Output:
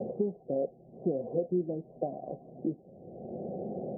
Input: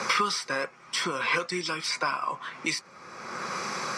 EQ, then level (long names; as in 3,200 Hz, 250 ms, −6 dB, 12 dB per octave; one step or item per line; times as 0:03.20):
Chebyshev low-pass filter 750 Hz, order 8
spectral tilt −1.5 dB per octave
dynamic equaliser 130 Hz, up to −5 dB, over −51 dBFS, Q 2.3
+2.5 dB